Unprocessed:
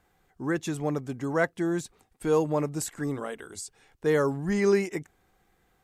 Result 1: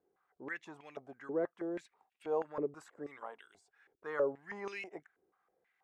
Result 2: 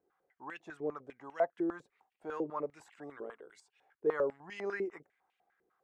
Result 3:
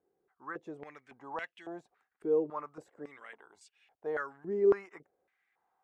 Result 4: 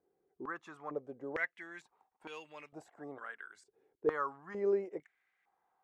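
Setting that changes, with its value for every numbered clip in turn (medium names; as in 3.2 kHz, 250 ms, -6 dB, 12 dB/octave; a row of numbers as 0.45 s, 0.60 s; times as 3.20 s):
step-sequenced band-pass, rate: 6.2 Hz, 10 Hz, 3.6 Hz, 2.2 Hz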